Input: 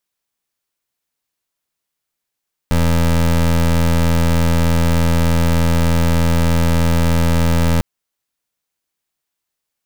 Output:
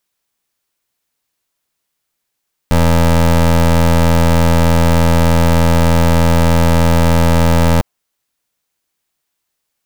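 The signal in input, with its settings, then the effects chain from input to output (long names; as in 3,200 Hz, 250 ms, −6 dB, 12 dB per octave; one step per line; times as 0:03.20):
pulse wave 83.3 Hz, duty 23% −13.5 dBFS 5.10 s
dynamic equaliser 740 Hz, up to +7 dB, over −34 dBFS, Q 1
in parallel at 0 dB: soft clipping −20.5 dBFS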